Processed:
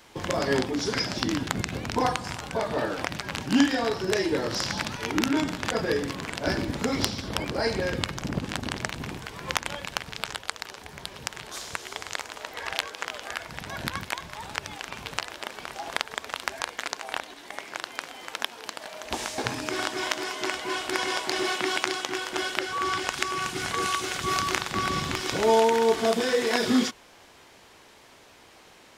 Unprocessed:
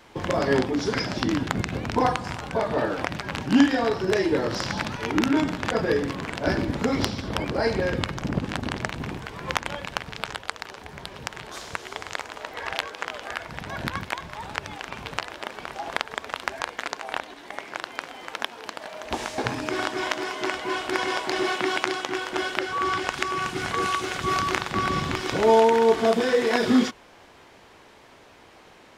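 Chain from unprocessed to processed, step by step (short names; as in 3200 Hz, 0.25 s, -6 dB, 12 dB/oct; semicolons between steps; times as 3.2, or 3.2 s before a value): high shelf 3700 Hz +10 dB; gain -3.5 dB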